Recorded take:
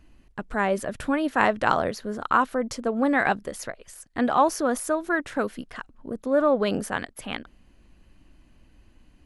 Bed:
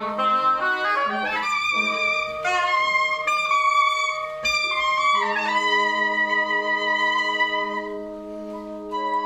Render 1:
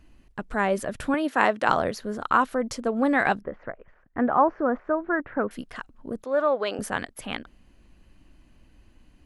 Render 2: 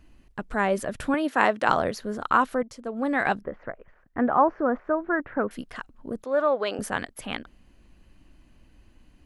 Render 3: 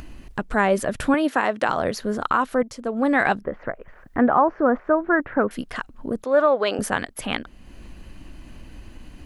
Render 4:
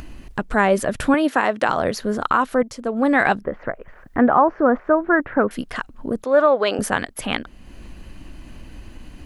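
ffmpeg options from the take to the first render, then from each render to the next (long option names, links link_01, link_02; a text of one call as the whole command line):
ffmpeg -i in.wav -filter_complex "[0:a]asettb=1/sr,asplit=3[link_01][link_02][link_03];[link_01]atrim=end=1.144[link_04];[link_02]atrim=start=1.14:end=1.69,asetpts=PTS-STARTPTS,afade=type=in:duration=0.004:curve=qsin,afade=type=out:start_time=0.546:duration=0.004:curve=qsin,highpass=210[link_05];[link_03]atrim=start=1.686[link_06];[link_04][link_05]acrossfade=duration=0.004:curve1=hsin:curve2=qsin[link_07];[link_07][link_06]acrossfade=duration=0.004:curve1=qsin:curve2=hsin,asettb=1/sr,asplit=3[link_08][link_09][link_10];[link_08]atrim=end=3.414[link_11];[link_09]atrim=start=3.41:end=5.51,asetpts=PTS-STARTPTS,afade=type=in:duration=0.004:curve=qsin,afade=type=out:start_time=2.096:duration=0.004:curve=qsin,lowpass=frequency=1800:width=0.5412,lowpass=frequency=1800:width=1.3066[link_12];[link_10]atrim=start=5.506[link_13];[link_11][link_12]acrossfade=duration=0.004:curve1=hsin:curve2=qsin[link_14];[link_14][link_13]acrossfade=duration=0.004:curve1=qsin:curve2=hsin,asettb=1/sr,asplit=3[link_15][link_16][link_17];[link_15]atrim=end=6.244[link_18];[link_16]atrim=start=6.24:end=6.79,asetpts=PTS-STARTPTS,afade=type=in:duration=0.004:curve=qsin,afade=type=out:start_time=0.546:duration=0.004:curve=qsin,highpass=480,lowpass=6000[link_19];[link_17]atrim=start=6.786[link_20];[link_18][link_19]acrossfade=duration=0.004:curve1=hsin:curve2=qsin[link_21];[link_21][link_20]acrossfade=duration=0.004:curve1=qsin:curve2=hsin" out.wav
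ffmpeg -i in.wav -filter_complex "[0:a]asplit=2[link_01][link_02];[link_01]atrim=end=2.63,asetpts=PTS-STARTPTS,afade=type=out:start_time=2.626:duration=0.004:curve=hsin:silence=0.188365[link_03];[link_02]atrim=start=2.63,asetpts=PTS-STARTPTS,afade=type=in:duration=0.81:silence=0.188365[link_04];[link_03][link_04]concat=n=2:v=0:a=1" out.wav
ffmpeg -i in.wav -filter_complex "[0:a]asplit=2[link_01][link_02];[link_02]acompressor=mode=upward:threshold=-29dB:ratio=2.5,volume=0dB[link_03];[link_01][link_03]amix=inputs=2:normalize=0,alimiter=limit=-7.5dB:level=0:latency=1:release=267" out.wav
ffmpeg -i in.wav -af "volume=2.5dB" out.wav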